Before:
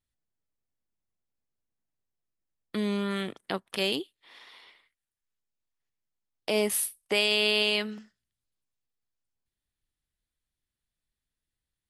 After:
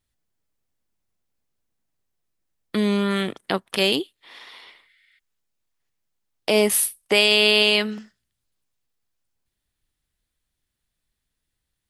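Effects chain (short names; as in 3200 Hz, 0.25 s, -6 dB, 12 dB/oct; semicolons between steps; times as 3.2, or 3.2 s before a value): spectral repair 4.91–5.16, 1300–9700 Hz before; gain +8 dB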